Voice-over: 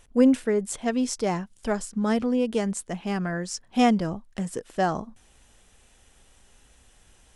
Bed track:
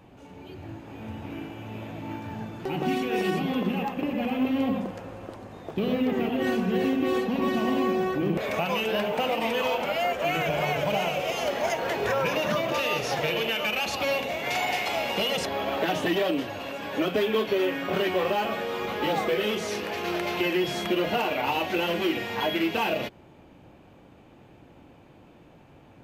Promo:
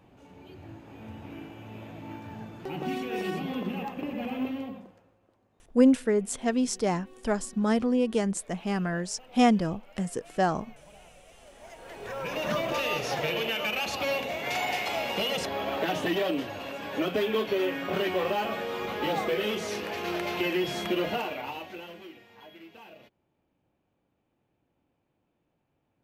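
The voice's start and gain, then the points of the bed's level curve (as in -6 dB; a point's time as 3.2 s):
5.60 s, -1.0 dB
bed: 4.45 s -5.5 dB
5.19 s -27.5 dB
11.42 s -27.5 dB
12.51 s -2.5 dB
21.05 s -2.5 dB
22.24 s -23.5 dB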